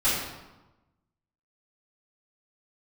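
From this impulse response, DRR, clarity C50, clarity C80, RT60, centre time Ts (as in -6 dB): -13.5 dB, 0.5 dB, 3.0 dB, 1.1 s, 71 ms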